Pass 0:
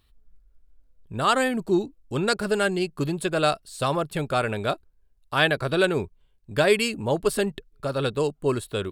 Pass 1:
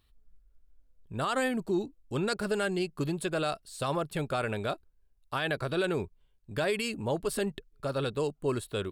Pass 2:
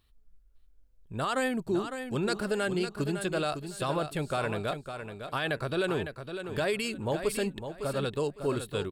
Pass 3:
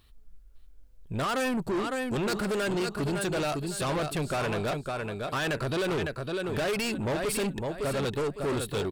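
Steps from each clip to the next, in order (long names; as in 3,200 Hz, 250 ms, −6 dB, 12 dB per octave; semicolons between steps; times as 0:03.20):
brickwall limiter −16 dBFS, peak gain reduction 9 dB; level −4.5 dB
repeating echo 556 ms, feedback 22%, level −8.5 dB
soft clipping −34.5 dBFS, distortion −7 dB; level +8.5 dB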